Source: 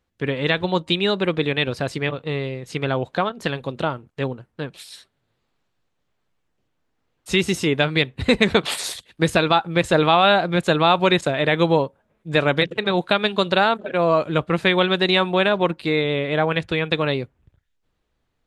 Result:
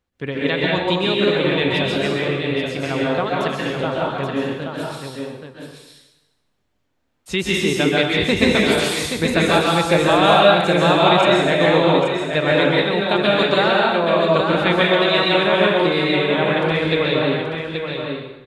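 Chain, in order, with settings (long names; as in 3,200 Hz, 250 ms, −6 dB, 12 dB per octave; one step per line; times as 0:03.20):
on a send: single-tap delay 828 ms −6.5 dB
on the sum: dense smooth reverb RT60 0.98 s, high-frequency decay 0.95×, pre-delay 115 ms, DRR −4 dB
level −3 dB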